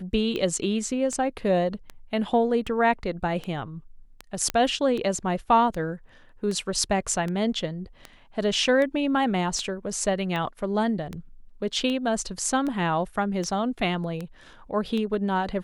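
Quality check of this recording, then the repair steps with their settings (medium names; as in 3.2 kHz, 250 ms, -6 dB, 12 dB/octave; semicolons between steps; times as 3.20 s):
tick 78 rpm -19 dBFS
4.50 s: pop -11 dBFS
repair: de-click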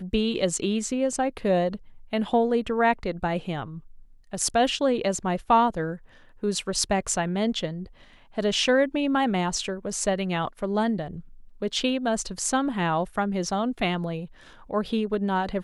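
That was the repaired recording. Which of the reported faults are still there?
nothing left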